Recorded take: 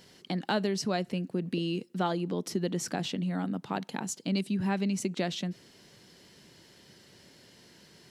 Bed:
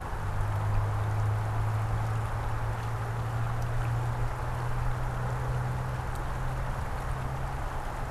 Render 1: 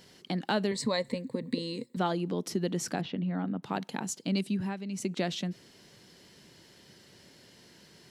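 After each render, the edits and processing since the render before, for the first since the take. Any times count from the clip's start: 0.71–1.97 ripple EQ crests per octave 1, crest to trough 15 dB; 3.01–3.63 air absorption 300 m; 4.53–5.1 dip -9.5 dB, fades 0.24 s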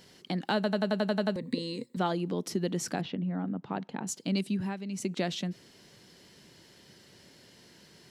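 0.55 stutter in place 0.09 s, 9 plays; 3.15–4.07 tape spacing loss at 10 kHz 24 dB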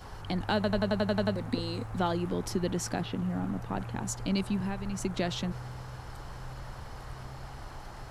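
add bed -10 dB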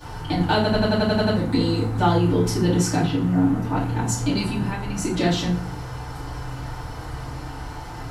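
FDN reverb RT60 0.42 s, low-frequency decay 1.55×, high-frequency decay 0.9×, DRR -9 dB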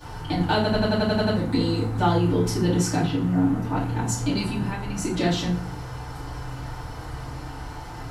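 gain -2 dB

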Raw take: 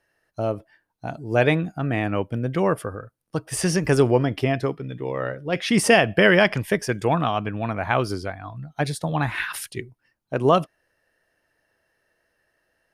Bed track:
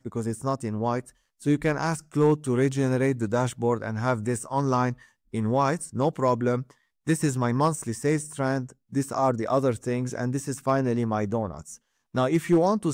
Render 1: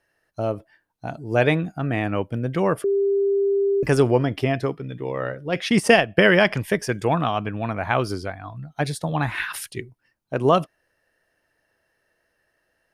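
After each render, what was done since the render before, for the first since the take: 2.84–3.83 bleep 397 Hz -17 dBFS; 5.68–6.21 transient shaper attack +2 dB, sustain -9 dB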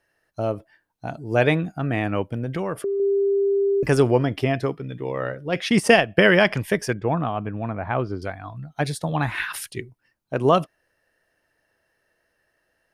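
2.33–3 compressor, threshold -22 dBFS; 6.93–8.22 tape spacing loss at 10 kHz 37 dB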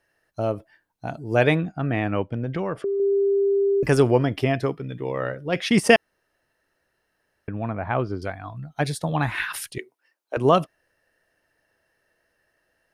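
1.6–3.13 air absorption 100 m; 5.96–7.48 room tone; 9.78–10.37 HPF 370 Hz 24 dB/oct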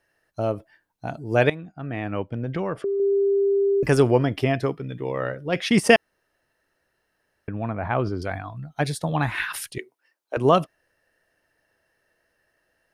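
1.5–2.56 fade in linear, from -16.5 dB; 7.77–8.45 sustainer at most 64 dB/s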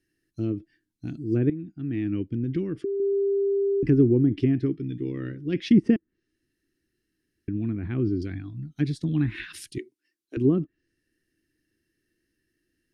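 treble ducked by the level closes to 960 Hz, closed at -15.5 dBFS; EQ curve 180 Hz 0 dB, 330 Hz +7 dB, 590 Hz -26 dB, 890 Hz -28 dB, 1800 Hz -10 dB, 4700 Hz -4 dB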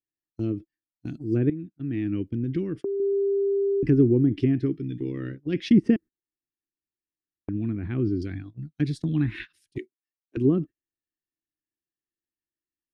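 gate -35 dBFS, range -25 dB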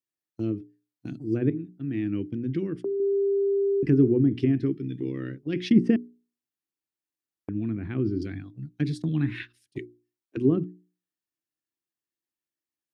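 HPF 94 Hz; notches 60/120/180/240/300/360/420 Hz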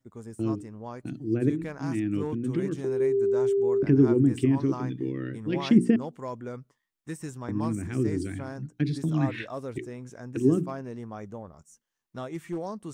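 add bed track -13 dB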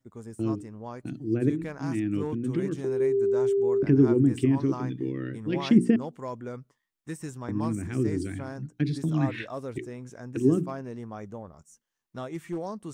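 nothing audible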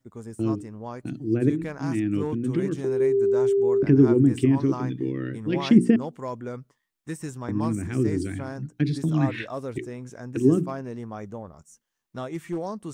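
gain +3 dB

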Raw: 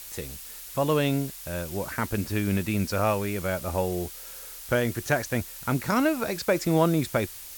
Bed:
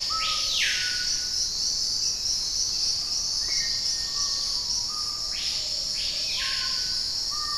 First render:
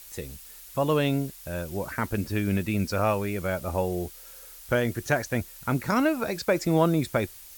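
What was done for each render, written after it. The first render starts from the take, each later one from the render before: denoiser 6 dB, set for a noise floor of -42 dBFS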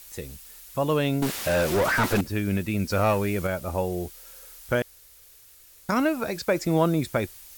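1.22–2.21 overdrive pedal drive 36 dB, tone 2400 Hz, clips at -14 dBFS; 2.9–3.47 sample leveller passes 1; 4.82–5.89 room tone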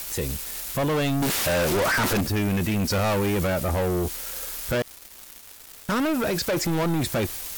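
sample leveller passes 5; limiter -20.5 dBFS, peak gain reduction 11 dB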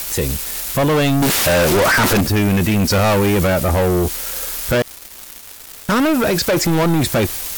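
gain +8.5 dB

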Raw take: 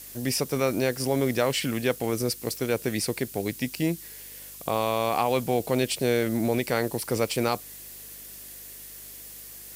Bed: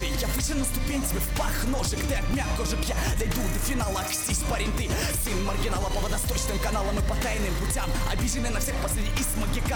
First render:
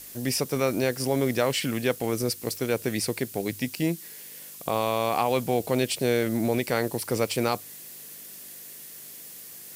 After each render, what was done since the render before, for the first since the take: de-hum 50 Hz, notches 2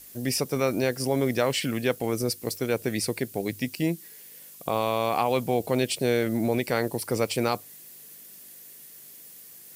denoiser 6 dB, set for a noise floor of -44 dBFS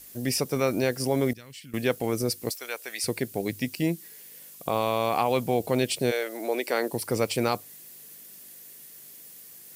1.33–1.74 passive tone stack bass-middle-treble 6-0-2; 2.5–3.04 HPF 940 Hz; 6.1–6.92 HPF 520 Hz -> 230 Hz 24 dB/oct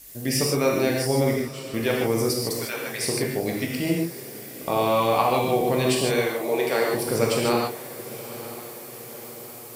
diffused feedback echo 0.949 s, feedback 58%, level -15.5 dB; non-linear reverb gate 0.18 s flat, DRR -2.5 dB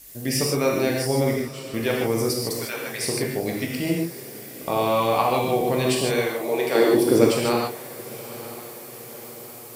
6.75–7.31 small resonant body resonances 310/3400 Hz, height 15 dB, ringing for 30 ms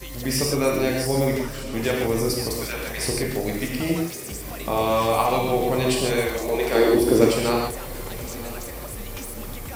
add bed -9 dB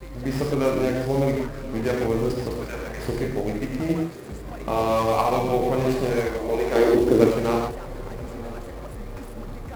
median filter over 15 samples; vibrato 0.9 Hz 29 cents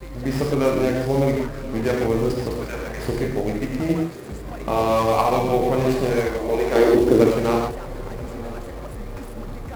gain +2.5 dB; limiter -3 dBFS, peak gain reduction 3 dB

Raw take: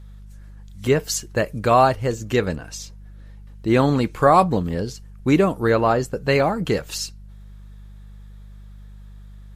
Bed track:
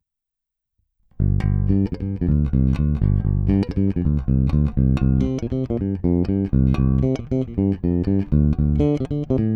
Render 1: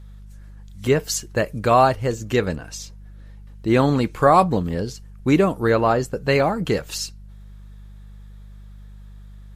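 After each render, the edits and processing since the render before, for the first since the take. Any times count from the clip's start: nothing audible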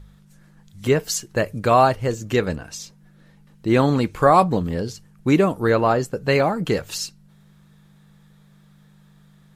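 de-hum 50 Hz, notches 2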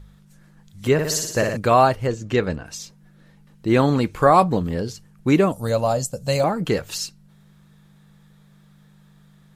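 0.93–1.57 flutter echo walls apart 10 m, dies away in 0.88 s; 2.07–2.66 air absorption 60 m; 5.52–6.44 EQ curve 140 Hz 0 dB, 250 Hz -5 dB, 380 Hz -17 dB, 570 Hz +2 dB, 910 Hz -6 dB, 1700 Hz -13 dB, 7500 Hz +12 dB, 13000 Hz +7 dB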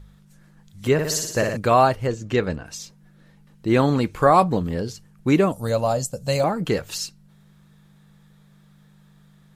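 gain -1 dB

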